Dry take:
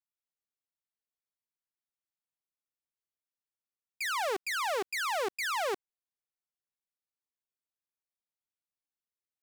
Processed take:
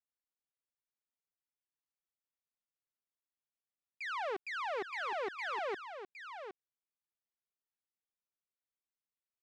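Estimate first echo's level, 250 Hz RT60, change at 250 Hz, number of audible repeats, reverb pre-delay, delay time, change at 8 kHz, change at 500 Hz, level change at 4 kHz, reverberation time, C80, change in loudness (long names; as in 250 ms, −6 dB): −9.0 dB, no reverb audible, −5.0 dB, 1, no reverb audible, 764 ms, −21.5 dB, −5.0 dB, −10.5 dB, no reverb audible, no reverb audible, −7.0 dB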